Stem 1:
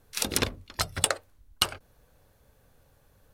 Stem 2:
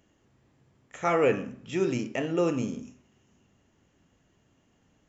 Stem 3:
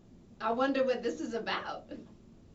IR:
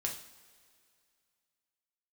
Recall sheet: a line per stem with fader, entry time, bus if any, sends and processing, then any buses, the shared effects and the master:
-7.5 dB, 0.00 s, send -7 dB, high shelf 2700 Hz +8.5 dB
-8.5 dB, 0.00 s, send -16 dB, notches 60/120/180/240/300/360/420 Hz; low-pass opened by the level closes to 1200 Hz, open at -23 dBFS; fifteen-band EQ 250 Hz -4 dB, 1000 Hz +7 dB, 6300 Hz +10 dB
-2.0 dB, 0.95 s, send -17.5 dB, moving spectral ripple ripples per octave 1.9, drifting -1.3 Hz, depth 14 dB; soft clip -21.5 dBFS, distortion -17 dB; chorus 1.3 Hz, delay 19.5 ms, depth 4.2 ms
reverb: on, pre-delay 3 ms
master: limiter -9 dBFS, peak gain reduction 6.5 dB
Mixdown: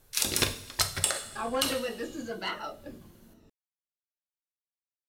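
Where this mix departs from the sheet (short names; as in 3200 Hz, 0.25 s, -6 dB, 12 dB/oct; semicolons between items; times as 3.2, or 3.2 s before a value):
stem 1: send -7 dB -> -1 dB; stem 2: muted; stem 3: missing chorus 1.3 Hz, delay 19.5 ms, depth 4.2 ms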